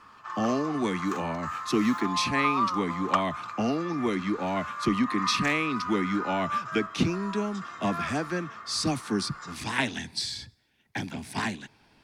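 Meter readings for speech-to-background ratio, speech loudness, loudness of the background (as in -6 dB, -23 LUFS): 4.5 dB, -29.5 LUFS, -34.0 LUFS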